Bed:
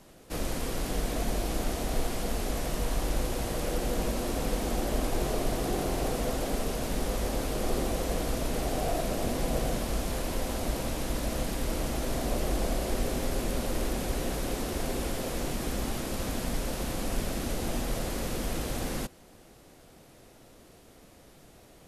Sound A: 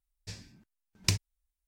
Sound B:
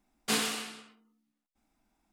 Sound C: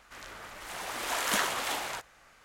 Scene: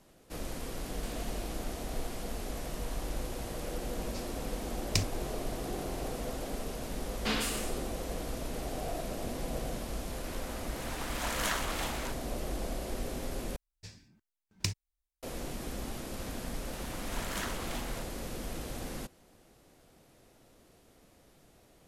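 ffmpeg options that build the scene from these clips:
-filter_complex "[2:a]asplit=2[a][b];[1:a]asplit=2[c][d];[3:a]asplit=2[e][f];[0:a]volume=-7dB[g];[a]acompressor=threshold=-37dB:ratio=6:attack=3.2:release=140:knee=1:detection=peak[h];[b]acrossover=split=5600[i][j];[j]adelay=150[k];[i][k]amix=inputs=2:normalize=0[l];[g]asplit=2[m][n];[m]atrim=end=13.564[o];[d]atrim=end=1.67,asetpts=PTS-STARTPTS,volume=-5.5dB[p];[n]atrim=start=15.226[q];[h]atrim=end=2.12,asetpts=PTS-STARTPTS,volume=-10dB,afade=t=in:d=0.004:c=hsin,afade=t=out:st=2.116:d=0.004:c=hsin,adelay=750[r];[c]atrim=end=1.67,asetpts=PTS-STARTPTS,volume=-2.5dB,afade=t=in:d=0.004:c=hsin,afade=t=out:st=1.666:d=0.004:c=hsin,adelay=3870[s];[l]atrim=end=2.12,asetpts=PTS-STARTPTS,volume=-2dB,afade=t=in:d=0.004:c=hsin,afade=t=out:st=2.116:d=0.004:c=hsin,adelay=6970[t];[e]atrim=end=2.44,asetpts=PTS-STARTPTS,volume=-4.5dB,afade=t=in:d=0.004:c=hsin,afade=t=out:st=2.436:d=0.004:c=hsin,adelay=10120[u];[f]atrim=end=2.44,asetpts=PTS-STARTPTS,volume=-10dB,afade=t=in:d=0.004:c=hsin,afade=t=out:st=2.436:d=0.004:c=hsin,adelay=707364S[v];[o][p]acrossfade=d=0.004:c1=hsin:c2=hsin[w];[w][q]acrossfade=d=0.004:c1=hsin:c2=hsin[x];[x][r][s][t][u][v]amix=inputs=6:normalize=0"

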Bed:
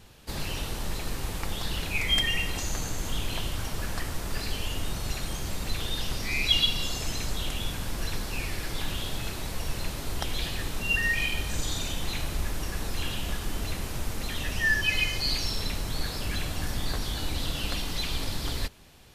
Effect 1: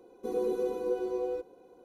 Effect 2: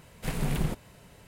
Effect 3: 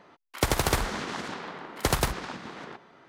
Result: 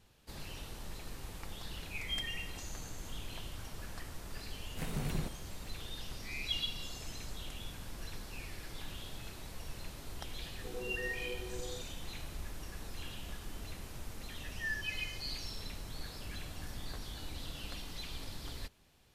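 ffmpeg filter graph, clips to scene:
-filter_complex "[0:a]volume=-13dB[a];[2:a]atrim=end=1.27,asetpts=PTS-STARTPTS,volume=-8dB,afade=t=in:d=0.004:c=hsin,afade=t=out:st=1.266:d=0.004:c=hsin,adelay=4540[b];[1:a]atrim=end=1.84,asetpts=PTS-STARTPTS,volume=-13.5dB,afade=t=in:d=0.004:c=hsin,afade=t=out:st=1.836:d=0.004:c=hsin,adelay=10400[c];[a][b][c]amix=inputs=3:normalize=0"

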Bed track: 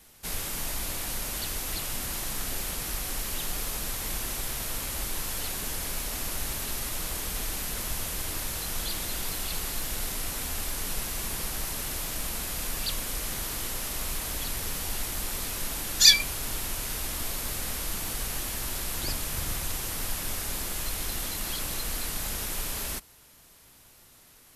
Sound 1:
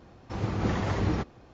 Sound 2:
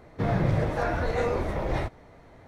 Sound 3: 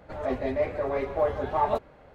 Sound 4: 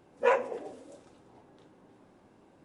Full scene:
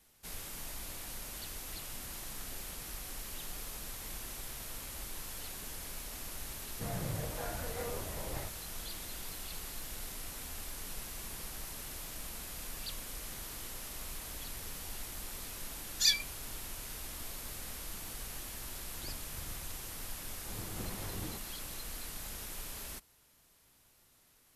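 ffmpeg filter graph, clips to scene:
-filter_complex "[0:a]volume=-11dB[a];[2:a]equalizer=f=340:t=o:w=0.21:g=-5,atrim=end=2.47,asetpts=PTS-STARTPTS,volume=-14dB,afade=t=in:d=0.004:c=hsin,afade=t=out:st=2.466:d=0.004:c=hsin,adelay=6610[b];[1:a]atrim=end=1.53,asetpts=PTS-STARTPTS,volume=-16dB,afade=t=in:d=0.004:c=hsin,afade=t=out:st=1.526:d=0.004:c=hsin,adelay=20150[c];[a][b][c]amix=inputs=3:normalize=0"

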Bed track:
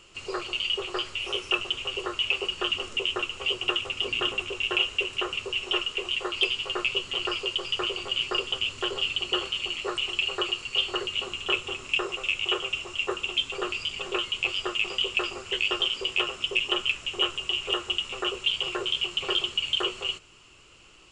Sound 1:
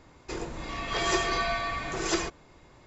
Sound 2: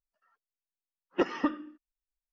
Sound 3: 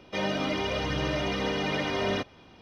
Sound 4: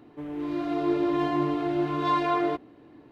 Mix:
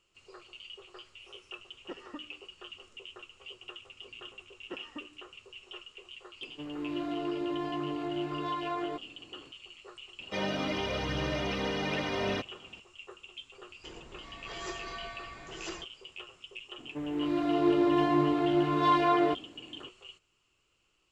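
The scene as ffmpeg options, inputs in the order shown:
-filter_complex "[2:a]asplit=2[a][b];[4:a]asplit=2[c][d];[0:a]volume=-19.5dB[e];[c]alimiter=limit=-21dB:level=0:latency=1:release=238[f];[a]atrim=end=2.32,asetpts=PTS-STARTPTS,volume=-16.5dB,afade=t=in:d=0.004:c=hsin,afade=t=out:st=2.316:d=0.004:c=hsin,adelay=700[g];[b]atrim=end=2.32,asetpts=PTS-STARTPTS,volume=-17dB,afade=t=in:d=0.004:c=hsin,afade=t=out:st=2.316:d=0.004:c=hsin,adelay=3520[h];[f]atrim=end=3.11,asetpts=PTS-STARTPTS,volume=-5dB,afade=t=in:d=0.004:c=hsin,afade=t=out:st=3.106:d=0.004:c=hsin,adelay=6410[i];[3:a]atrim=end=2.61,asetpts=PTS-STARTPTS,volume=-3.5dB,afade=t=in:d=0.004:c=hsin,afade=t=out:st=2.606:d=0.004:c=hsin,adelay=10190[j];[1:a]atrim=end=2.86,asetpts=PTS-STARTPTS,volume=-13.5dB,afade=t=in:d=0.004:c=hsin,afade=t=out:st=2.856:d=0.004:c=hsin,adelay=13550[k];[d]atrim=end=3.11,asetpts=PTS-STARTPTS,afade=t=in:d=0.004:c=hsin,afade=t=out:st=3.106:d=0.004:c=hsin,adelay=16780[l];[e][g][h][i][j][k][l]amix=inputs=7:normalize=0"

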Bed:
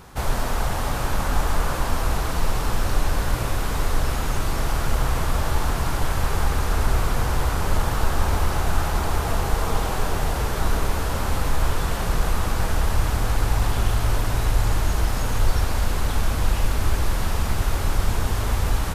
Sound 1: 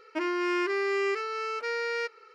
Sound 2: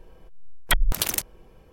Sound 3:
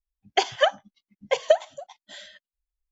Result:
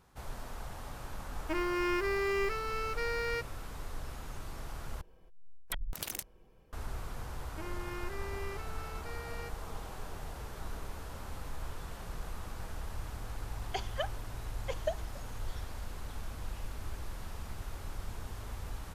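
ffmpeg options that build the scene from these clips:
-filter_complex "[1:a]asplit=2[a][b];[0:a]volume=-19.5dB[c];[a]acrusher=bits=8:mode=log:mix=0:aa=0.000001[d];[2:a]acompressor=threshold=-21dB:ratio=6:attack=3.2:release=140:knee=1:detection=peak[e];[c]asplit=2[f][g];[f]atrim=end=5.014[h];[e]atrim=end=1.72,asetpts=PTS-STARTPTS,volume=-10.5dB[i];[g]atrim=start=6.726[j];[d]atrim=end=2.34,asetpts=PTS-STARTPTS,volume=-4dB,afade=t=in:d=0.004:c=hsin,afade=t=out:st=2.336:d=0.004:c=hsin,adelay=1340[k];[b]atrim=end=2.34,asetpts=PTS-STARTPTS,volume=-15.5dB,afade=t=in:d=0.004:c=hsin,afade=t=out:st=2.336:d=0.004:c=hsin,adelay=7420[l];[3:a]atrim=end=2.91,asetpts=PTS-STARTPTS,volume=-16dB,afade=t=in:d=0.004:c=hsin,afade=t=out:st=2.906:d=0.004:c=hsin,adelay=13370[m];[h][i]acrossfade=d=0.004:c1=hsin:c2=hsin[n];[n][j]acrossfade=d=0.004:c1=hsin:c2=hsin[o];[o][k][l][m]amix=inputs=4:normalize=0"

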